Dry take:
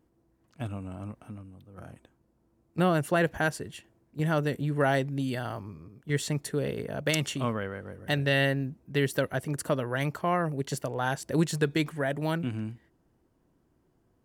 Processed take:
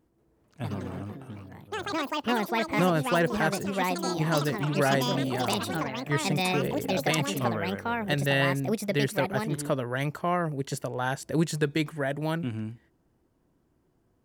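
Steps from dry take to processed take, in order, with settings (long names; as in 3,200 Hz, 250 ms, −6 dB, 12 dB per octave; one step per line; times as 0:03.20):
delay with pitch and tempo change per echo 184 ms, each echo +5 semitones, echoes 3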